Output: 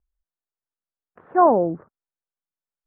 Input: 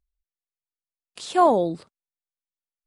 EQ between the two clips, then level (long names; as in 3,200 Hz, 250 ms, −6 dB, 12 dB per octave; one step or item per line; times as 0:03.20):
Butterworth low-pass 1,700 Hz 48 dB per octave
+2.0 dB